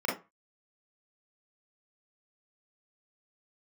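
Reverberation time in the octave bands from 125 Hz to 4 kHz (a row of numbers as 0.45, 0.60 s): 0.30, 0.25, 0.25, 0.30, 0.25, 0.15 s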